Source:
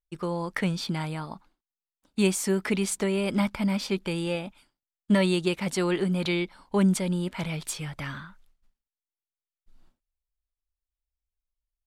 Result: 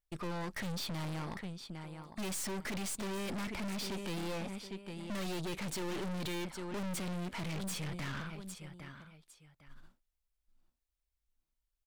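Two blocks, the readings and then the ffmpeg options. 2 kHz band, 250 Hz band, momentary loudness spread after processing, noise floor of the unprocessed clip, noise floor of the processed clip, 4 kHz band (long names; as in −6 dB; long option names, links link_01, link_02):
−9.5 dB, −13.0 dB, 9 LU, below −85 dBFS, below −85 dBFS, −8.0 dB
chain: -af "aecho=1:1:805|1610:0.158|0.0396,aeval=exprs='(tanh(112*val(0)+0.55)-tanh(0.55))/112':channel_layout=same,volume=3.5dB"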